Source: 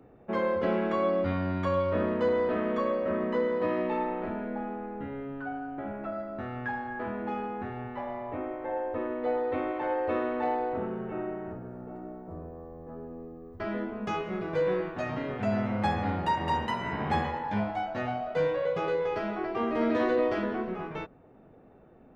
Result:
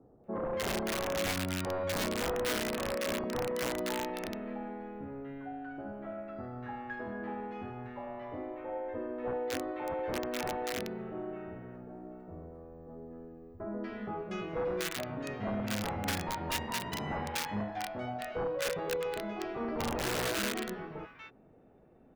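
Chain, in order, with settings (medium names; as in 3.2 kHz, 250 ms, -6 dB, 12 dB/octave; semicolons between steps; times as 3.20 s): integer overflow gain 21 dB; bands offset in time lows, highs 240 ms, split 1.2 kHz; trim -5 dB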